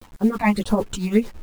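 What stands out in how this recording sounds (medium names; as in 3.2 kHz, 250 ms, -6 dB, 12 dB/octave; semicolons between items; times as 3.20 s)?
phasing stages 8, 1.7 Hz, lowest notch 420–2900 Hz; a quantiser's noise floor 8-bit, dither none; tremolo triangle 8.9 Hz, depth 80%; a shimmering, thickened sound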